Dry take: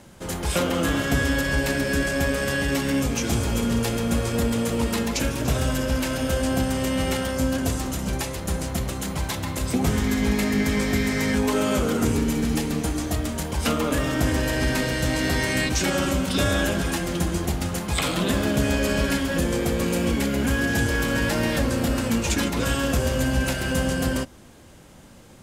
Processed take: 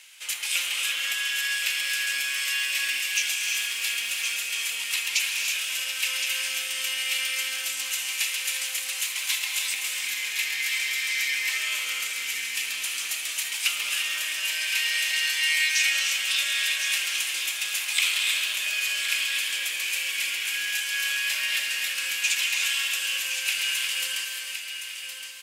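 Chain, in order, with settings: compression, threshold -24 dBFS, peak gain reduction 7.5 dB; delay 1066 ms -8 dB; 1.52–4.15 s: crackle 320 per s -39 dBFS; resonant high-pass 2.5 kHz, resonance Q 3.4; treble shelf 4.7 kHz +5.5 dB; gated-style reverb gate 370 ms rising, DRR 2 dB

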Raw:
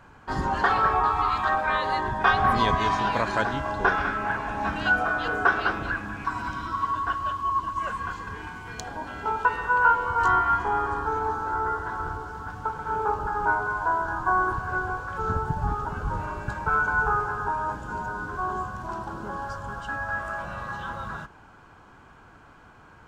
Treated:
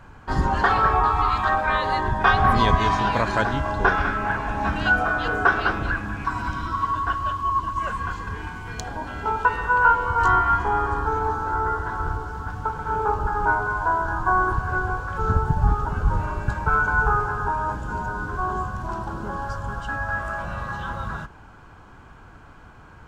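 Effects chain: bass shelf 110 Hz +9.5 dB; trim +2.5 dB

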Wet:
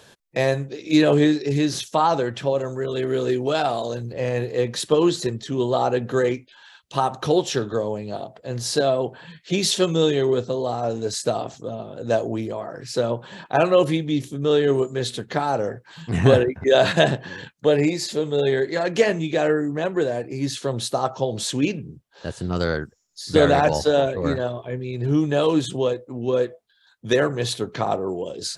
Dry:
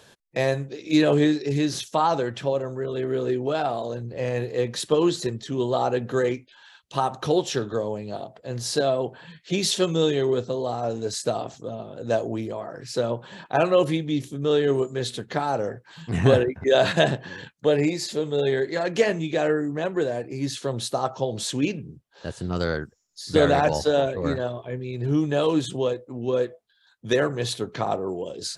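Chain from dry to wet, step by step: 2.58–4.13 s: treble shelf 2.8 kHz +9 dB; trim +2.5 dB

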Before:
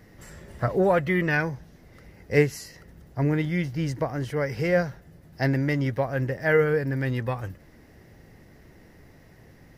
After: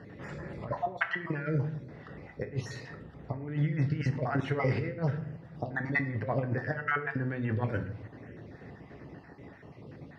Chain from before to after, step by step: random holes in the spectrogram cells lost 32%; compressor with a negative ratio -30 dBFS, ratio -0.5; on a send at -7 dB: reverberation RT60 0.65 s, pre-delay 7 ms; on the sum: speed mistake 25 fps video run at 24 fps; band-pass 110–2700 Hz

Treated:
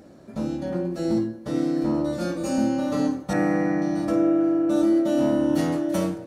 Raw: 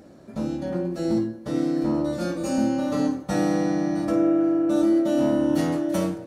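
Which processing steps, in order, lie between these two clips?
3.33–3.82 s: resonant high shelf 2.7 kHz -8 dB, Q 3

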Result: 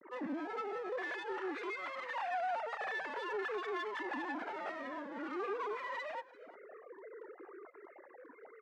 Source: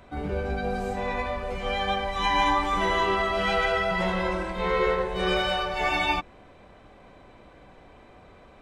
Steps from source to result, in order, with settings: formants replaced by sine waves; 0.98–2.55 s: tilt shelf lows -9.5 dB, about 680 Hz; compression 6:1, threshold -36 dBFS, peak gain reduction 20 dB; peak limiter -33.5 dBFS, peak gain reduction 7 dB; mistuned SSB -230 Hz 330–2200 Hz; one-sided clip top -49.5 dBFS; high-pass 190 Hz 24 dB/octave; distance through air 72 m; delay 343 ms -20 dB; Shepard-style flanger falling 0.51 Hz; trim +9.5 dB

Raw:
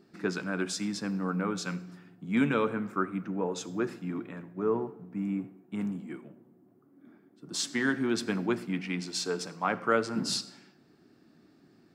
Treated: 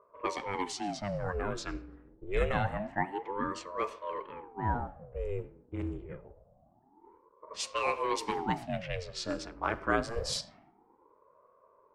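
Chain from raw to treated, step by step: level-controlled noise filter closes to 540 Hz, open at -26.5 dBFS; ring modulator with a swept carrier 460 Hz, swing 75%, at 0.26 Hz

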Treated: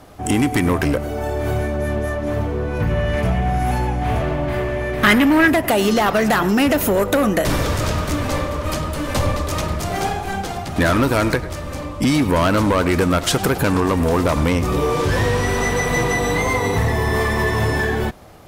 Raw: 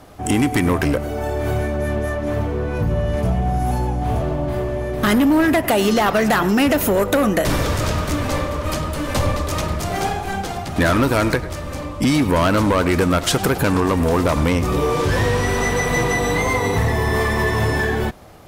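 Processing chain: 2.80–5.48 s: peaking EQ 2.1 kHz +10 dB 1.4 oct

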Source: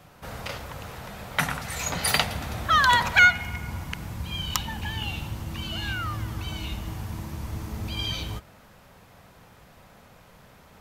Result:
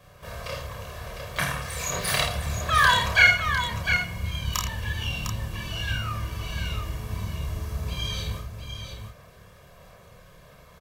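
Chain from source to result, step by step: chorus voices 2, 0.76 Hz, delay 29 ms, depth 1.7 ms; comb 1.8 ms, depth 75%; on a send: multi-tap echo 51/81/704 ms -7.5/-13.5/-7 dB; on the sum: harmony voices +12 st -16 dB

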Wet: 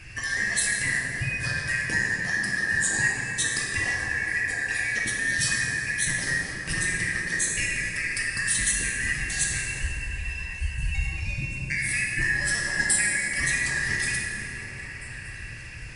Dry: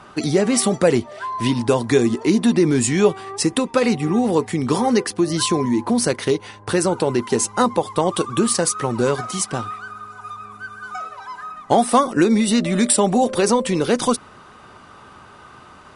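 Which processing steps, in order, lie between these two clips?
four frequency bands reordered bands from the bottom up 2143; compression 2:1, threshold -31 dBFS, peak gain reduction 12 dB; tone controls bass +14 dB, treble +9 dB; repeats whose band climbs or falls 235 ms, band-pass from 150 Hz, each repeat 0.7 oct, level -1 dB; plate-style reverb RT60 3 s, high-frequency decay 0.55×, DRR -3.5 dB; trim -6 dB

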